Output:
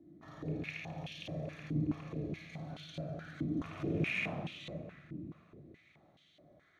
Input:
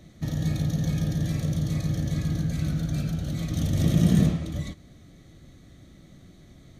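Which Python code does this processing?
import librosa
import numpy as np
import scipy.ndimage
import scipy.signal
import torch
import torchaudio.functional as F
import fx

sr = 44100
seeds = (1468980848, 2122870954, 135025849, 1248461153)

y = fx.rattle_buzz(x, sr, strikes_db=-19.0, level_db=-21.0)
y = fx.peak_eq(y, sr, hz=1500.0, db=-7.0, octaves=0.5, at=(0.76, 2.69))
y = fx.echo_feedback(y, sr, ms=600, feedback_pct=33, wet_db=-17.5)
y = fx.room_shoebox(y, sr, seeds[0], volume_m3=2100.0, walls='mixed', distance_m=3.2)
y = fx.filter_held_bandpass(y, sr, hz=4.7, low_hz=300.0, high_hz=3100.0)
y = y * 10.0 ** (-2.0 / 20.0)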